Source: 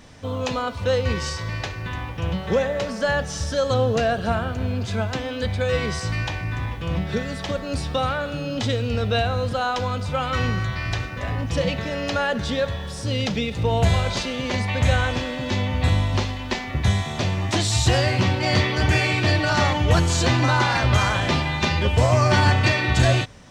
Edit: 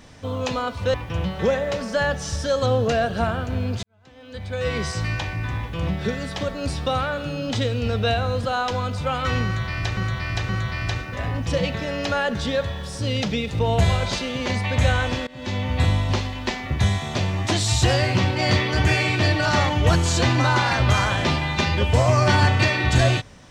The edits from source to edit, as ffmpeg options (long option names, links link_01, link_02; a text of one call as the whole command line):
ffmpeg -i in.wav -filter_complex "[0:a]asplit=6[link_01][link_02][link_03][link_04][link_05][link_06];[link_01]atrim=end=0.942[link_07];[link_02]atrim=start=2.018:end=4.91,asetpts=PTS-STARTPTS,afade=type=out:start_time=2.888:duration=0.004:curve=hsin[link_08];[link_03]atrim=start=4.91:end=11.052,asetpts=PTS-STARTPTS,afade=type=in:duration=0.96:curve=qua[link_09];[link_04]atrim=start=10.528:end=11.052[link_10];[link_05]atrim=start=10.528:end=15.31,asetpts=PTS-STARTPTS,afade=type=out:start_time=4.778:duration=0.004:curve=hsin:silence=0.0707946[link_11];[link_06]atrim=start=15.31,asetpts=PTS-STARTPTS,afade=type=in:duration=0.54:curve=qsin:silence=0.0707946[link_12];[link_08][link_09]concat=n=2:v=0:a=1[link_13];[link_07][link_13]acrossfade=duration=0.004:curve1=hsin:curve2=hsin[link_14];[link_14][link_10]acrossfade=duration=0.004:curve1=hsin:curve2=hsin[link_15];[link_11][link_12]concat=n=2:v=0:a=1[link_16];[link_15][link_16]acrossfade=duration=0.004:curve1=hsin:curve2=hsin" out.wav